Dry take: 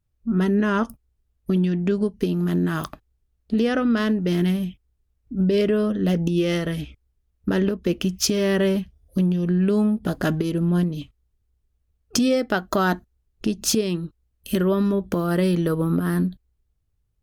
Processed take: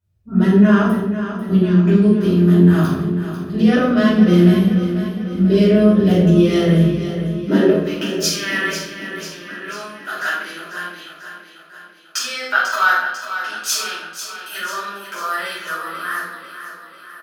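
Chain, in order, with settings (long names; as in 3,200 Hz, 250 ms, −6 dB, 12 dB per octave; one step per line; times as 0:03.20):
high-pass filter sweep 84 Hz → 1,400 Hz, 0:07.20–0:07.95
repeating echo 494 ms, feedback 56%, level −10 dB
convolution reverb RT60 0.85 s, pre-delay 5 ms, DRR −10.5 dB
level −8 dB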